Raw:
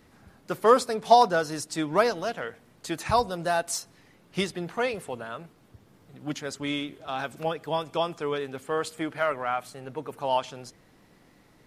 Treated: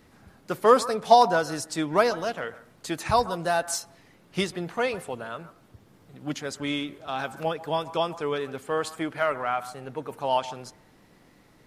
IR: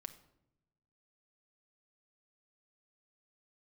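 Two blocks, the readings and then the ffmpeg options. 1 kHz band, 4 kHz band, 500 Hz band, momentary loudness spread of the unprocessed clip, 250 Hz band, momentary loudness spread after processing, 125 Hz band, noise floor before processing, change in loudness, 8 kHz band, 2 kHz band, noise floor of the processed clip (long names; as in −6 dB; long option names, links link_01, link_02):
+1.0 dB, +1.0 dB, +1.0 dB, 16 LU, +1.0 dB, 17 LU, +1.0 dB, −59 dBFS, +1.0 dB, +1.0 dB, +1.0 dB, −58 dBFS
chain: -filter_complex "[0:a]asplit=2[link_01][link_02];[link_02]highpass=650[link_03];[1:a]atrim=start_sample=2205,lowpass=frequency=1600:width=0.5412,lowpass=frequency=1600:width=1.3066,adelay=140[link_04];[link_03][link_04]afir=irnorm=-1:irlink=0,volume=-8dB[link_05];[link_01][link_05]amix=inputs=2:normalize=0,volume=1dB"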